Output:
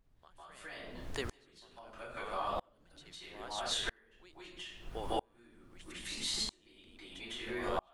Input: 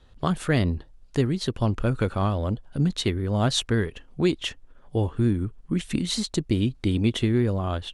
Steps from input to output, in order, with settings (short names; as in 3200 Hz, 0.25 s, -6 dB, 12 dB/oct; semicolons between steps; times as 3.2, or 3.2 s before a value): HPF 770 Hz 12 dB/oct; reverb RT60 0.55 s, pre-delay 0.149 s, DRR -10 dB; added noise brown -37 dBFS; compressor 6:1, threshold -31 dBFS, peak gain reduction 16.5 dB; dB-ramp tremolo swelling 0.77 Hz, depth 35 dB; gain +1.5 dB